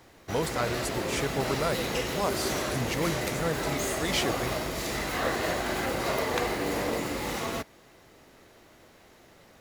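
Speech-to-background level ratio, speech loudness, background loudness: −2.0 dB, −32.5 LKFS, −30.5 LKFS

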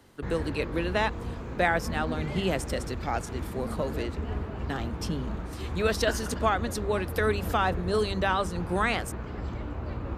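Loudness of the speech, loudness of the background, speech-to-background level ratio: −30.0 LKFS, −35.5 LKFS, 5.5 dB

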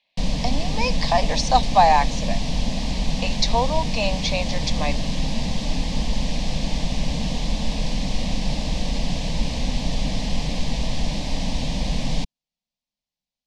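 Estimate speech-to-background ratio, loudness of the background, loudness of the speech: 4.0 dB, −27.0 LKFS, −23.0 LKFS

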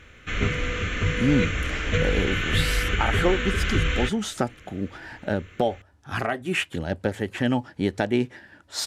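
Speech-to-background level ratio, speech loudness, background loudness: −2.0 dB, −27.5 LKFS, −25.5 LKFS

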